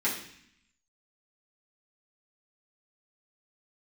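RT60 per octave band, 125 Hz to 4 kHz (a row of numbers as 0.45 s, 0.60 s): 0.95 s, 0.95 s, 0.60 s, 0.65 s, 0.90 s, 0.80 s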